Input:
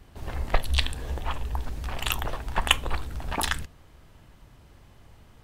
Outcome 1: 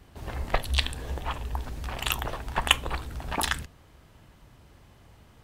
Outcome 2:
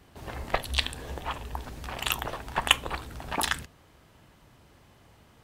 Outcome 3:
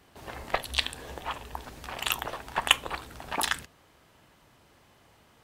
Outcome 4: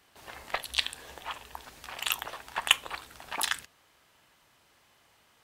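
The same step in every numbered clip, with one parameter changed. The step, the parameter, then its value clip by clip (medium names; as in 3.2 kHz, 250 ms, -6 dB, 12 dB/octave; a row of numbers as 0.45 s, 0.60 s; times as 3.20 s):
high-pass, cutoff frequency: 43 Hz, 140 Hz, 360 Hz, 1.4 kHz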